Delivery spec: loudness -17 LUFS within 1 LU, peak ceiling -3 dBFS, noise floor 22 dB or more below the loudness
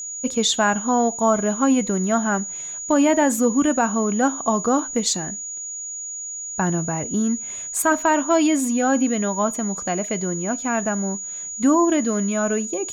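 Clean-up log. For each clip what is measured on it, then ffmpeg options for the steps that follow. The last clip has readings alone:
steady tone 6800 Hz; tone level -29 dBFS; loudness -21.0 LUFS; peak -8.0 dBFS; loudness target -17.0 LUFS
-> -af "bandreject=f=6.8k:w=30"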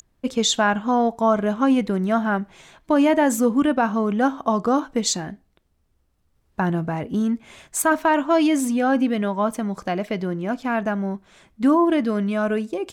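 steady tone none; loudness -21.5 LUFS; peak -8.5 dBFS; loudness target -17.0 LUFS
-> -af "volume=4.5dB"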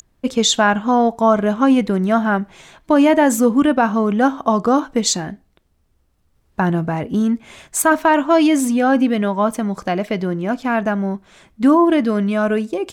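loudness -17.0 LUFS; peak -4.0 dBFS; noise floor -62 dBFS

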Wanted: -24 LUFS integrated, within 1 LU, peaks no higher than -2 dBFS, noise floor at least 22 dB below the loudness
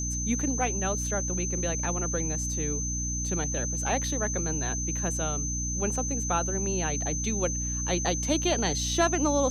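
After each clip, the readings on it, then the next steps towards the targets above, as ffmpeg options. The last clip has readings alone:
hum 60 Hz; harmonics up to 300 Hz; hum level -31 dBFS; steady tone 6200 Hz; tone level -31 dBFS; loudness -27.5 LUFS; peak -12.0 dBFS; loudness target -24.0 LUFS
-> -af "bandreject=f=60:t=h:w=4,bandreject=f=120:t=h:w=4,bandreject=f=180:t=h:w=4,bandreject=f=240:t=h:w=4,bandreject=f=300:t=h:w=4"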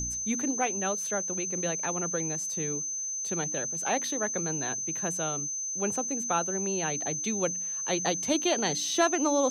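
hum none; steady tone 6200 Hz; tone level -31 dBFS
-> -af "bandreject=f=6.2k:w=30"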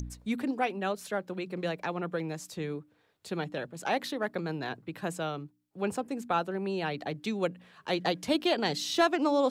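steady tone none; loudness -32.5 LUFS; peak -14.0 dBFS; loudness target -24.0 LUFS
-> -af "volume=8.5dB"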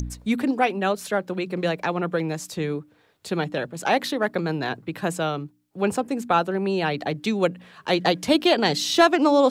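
loudness -24.0 LUFS; peak -5.5 dBFS; noise floor -60 dBFS

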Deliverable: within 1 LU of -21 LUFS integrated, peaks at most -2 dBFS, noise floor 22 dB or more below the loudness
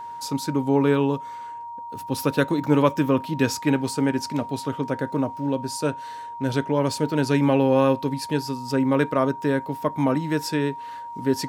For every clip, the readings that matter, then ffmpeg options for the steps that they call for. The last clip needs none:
steady tone 940 Hz; tone level -33 dBFS; loudness -23.5 LUFS; peak -4.5 dBFS; loudness target -21.0 LUFS
-> -af "bandreject=f=940:w=30"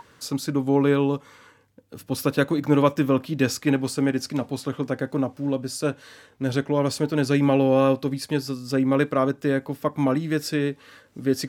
steady tone none; loudness -24.0 LUFS; peak -5.5 dBFS; loudness target -21.0 LUFS
-> -af "volume=3dB"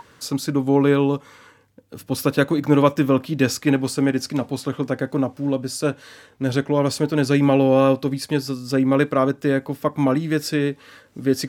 loudness -21.0 LUFS; peak -2.5 dBFS; noise floor -54 dBFS

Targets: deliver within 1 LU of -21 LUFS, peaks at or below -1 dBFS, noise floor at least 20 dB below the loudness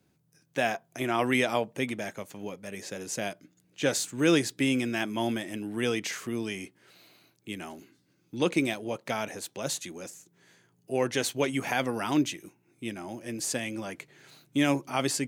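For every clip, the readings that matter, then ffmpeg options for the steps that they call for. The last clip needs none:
loudness -30.0 LUFS; peak -10.5 dBFS; loudness target -21.0 LUFS
-> -af "volume=9dB"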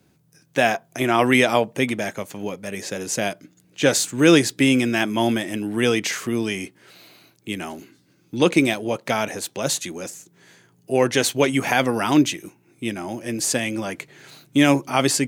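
loudness -21.0 LUFS; peak -1.5 dBFS; noise floor -60 dBFS

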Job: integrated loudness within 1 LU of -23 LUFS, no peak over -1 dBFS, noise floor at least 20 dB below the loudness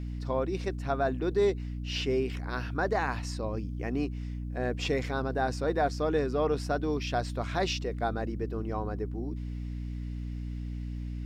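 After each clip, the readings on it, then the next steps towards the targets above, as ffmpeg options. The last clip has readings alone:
hum 60 Hz; harmonics up to 300 Hz; hum level -33 dBFS; loudness -32.0 LUFS; peak -16.0 dBFS; loudness target -23.0 LUFS
-> -af "bandreject=f=60:t=h:w=4,bandreject=f=120:t=h:w=4,bandreject=f=180:t=h:w=4,bandreject=f=240:t=h:w=4,bandreject=f=300:t=h:w=4"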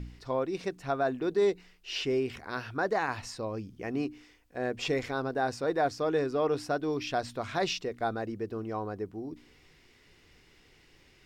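hum none; loudness -32.0 LUFS; peak -17.5 dBFS; loudness target -23.0 LUFS
-> -af "volume=9dB"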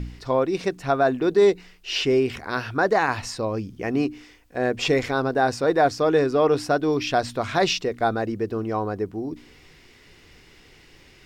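loudness -23.0 LUFS; peak -8.5 dBFS; noise floor -52 dBFS

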